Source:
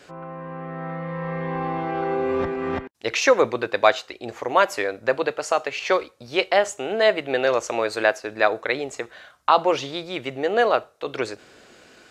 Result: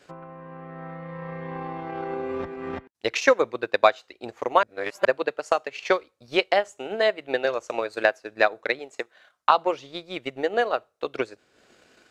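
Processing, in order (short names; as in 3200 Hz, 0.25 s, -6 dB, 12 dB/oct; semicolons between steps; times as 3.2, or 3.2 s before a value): 4.63–5.05 reverse; transient shaper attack +9 dB, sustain -7 dB; 8.79–9.49 bell 68 Hz -13.5 dB 2.4 oct; gain -7.5 dB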